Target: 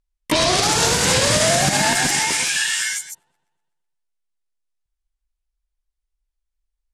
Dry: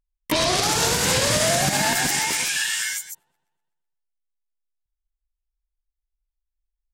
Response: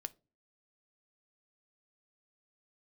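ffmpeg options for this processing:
-af "lowpass=f=11k:w=0.5412,lowpass=f=11k:w=1.3066,volume=3.5dB"

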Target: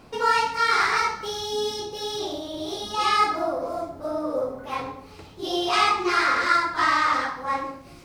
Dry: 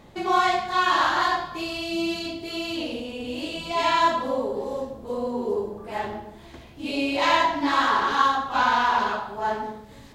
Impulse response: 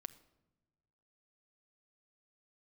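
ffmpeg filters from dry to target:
-af "asetrate=55566,aresample=44100"

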